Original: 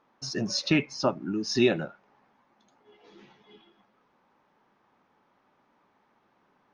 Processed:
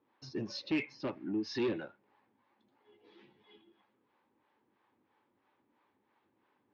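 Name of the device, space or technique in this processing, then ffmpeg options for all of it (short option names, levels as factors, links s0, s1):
guitar amplifier with harmonic tremolo: -filter_complex "[0:a]asettb=1/sr,asplit=3[s0][s1][s2];[s0]atrim=end=0.784[s3];[s1]atrim=start=0.78:end=1.7,asetpts=PTS-STARTPTS,afade=t=in:d=0.004:c=qsin,afade=t=out:st=0.916:d=0.004:c=qsin,equalizer=f=2100:w=1.4:g=5.5[s4];[s2]atrim=start=1.696[s5];[s3][s4]acrossfade=d=0.004:c1=hsin:c2=qsin[s6];[s6][s5]acrossfade=d=0.004:c1=qsin:c2=hsin,acrossover=split=490[s7][s8];[s7]aeval=exprs='val(0)*(1-0.7/2+0.7/2*cos(2*PI*3*n/s))':c=same[s9];[s8]aeval=exprs='val(0)*(1-0.7/2-0.7/2*cos(2*PI*3*n/s))':c=same[s10];[s9][s10]amix=inputs=2:normalize=0,asoftclip=type=tanh:threshold=0.0501,highpass=78,equalizer=f=98:t=q:w=4:g=5,equalizer=f=170:t=q:w=4:g=-8,equalizer=f=320:t=q:w=4:g=5,equalizer=f=670:t=q:w=4:g=-7,equalizer=f=1300:t=q:w=4:g=-6,lowpass=f=4300:w=0.5412,lowpass=f=4300:w=1.3066,volume=0.708"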